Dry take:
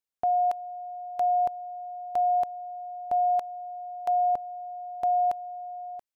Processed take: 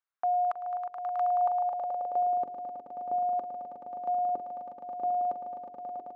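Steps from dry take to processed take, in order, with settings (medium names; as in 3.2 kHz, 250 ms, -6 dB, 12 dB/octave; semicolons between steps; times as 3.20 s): de-hum 45.01 Hz, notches 11; dynamic bell 1.2 kHz, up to +7 dB, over -50 dBFS, Q 4.2; echo with a slow build-up 107 ms, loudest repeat 8, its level -10 dB; band-pass sweep 1.3 kHz -> 330 Hz, 1.21–2.43 s; in parallel at +2 dB: peak limiter -33.5 dBFS, peak gain reduction 7.5 dB; on the sum: trim +1.5 dB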